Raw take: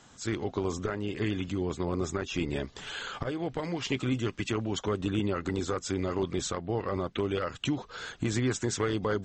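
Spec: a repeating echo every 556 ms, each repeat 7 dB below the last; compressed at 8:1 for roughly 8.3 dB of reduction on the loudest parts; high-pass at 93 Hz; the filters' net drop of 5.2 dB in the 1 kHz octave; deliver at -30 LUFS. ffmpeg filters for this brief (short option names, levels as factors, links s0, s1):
-af "highpass=93,equalizer=f=1000:t=o:g=-7,acompressor=threshold=0.02:ratio=8,aecho=1:1:556|1112|1668|2224|2780:0.447|0.201|0.0905|0.0407|0.0183,volume=2.66"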